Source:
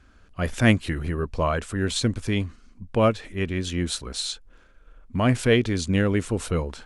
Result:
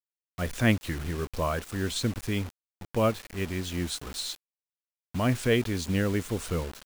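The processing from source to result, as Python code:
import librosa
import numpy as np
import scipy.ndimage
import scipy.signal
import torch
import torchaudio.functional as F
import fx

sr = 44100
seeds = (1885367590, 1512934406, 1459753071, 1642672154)

y = fx.quant_dither(x, sr, seeds[0], bits=6, dither='none')
y = y * librosa.db_to_amplitude(-5.0)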